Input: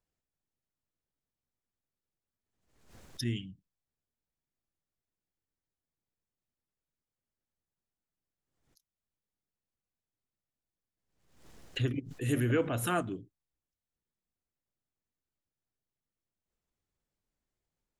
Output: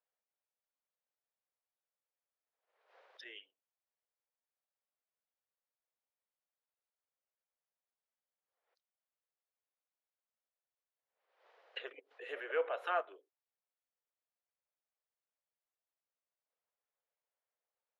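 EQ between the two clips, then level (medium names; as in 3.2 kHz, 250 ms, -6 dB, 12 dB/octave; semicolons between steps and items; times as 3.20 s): steep high-pass 470 Hz 48 dB/octave; distance through air 320 m; treble shelf 6.1 kHz -7.5 dB; 0.0 dB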